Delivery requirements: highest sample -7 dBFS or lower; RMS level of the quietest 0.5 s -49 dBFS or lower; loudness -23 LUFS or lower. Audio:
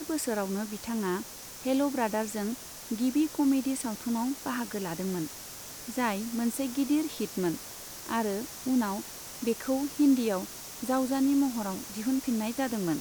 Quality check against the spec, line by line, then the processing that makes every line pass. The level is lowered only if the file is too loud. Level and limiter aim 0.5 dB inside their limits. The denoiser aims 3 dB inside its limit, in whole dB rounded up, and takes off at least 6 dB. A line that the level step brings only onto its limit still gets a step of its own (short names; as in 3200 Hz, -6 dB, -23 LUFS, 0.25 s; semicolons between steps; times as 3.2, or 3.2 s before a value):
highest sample -15.5 dBFS: OK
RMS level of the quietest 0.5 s -43 dBFS: fail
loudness -30.5 LUFS: OK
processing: denoiser 9 dB, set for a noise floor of -43 dBFS